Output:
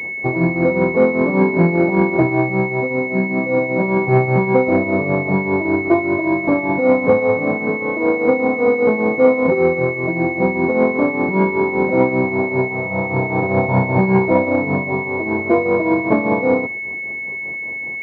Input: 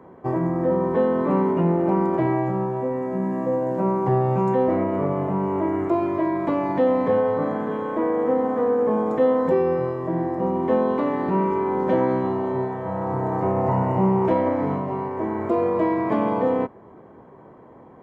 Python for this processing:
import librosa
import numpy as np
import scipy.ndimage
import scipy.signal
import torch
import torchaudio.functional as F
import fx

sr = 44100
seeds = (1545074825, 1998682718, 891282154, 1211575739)

y = fx.tremolo_shape(x, sr, shape='triangle', hz=5.1, depth_pct=75)
y = fx.pwm(y, sr, carrier_hz=2200.0)
y = y * 10.0 ** (9.0 / 20.0)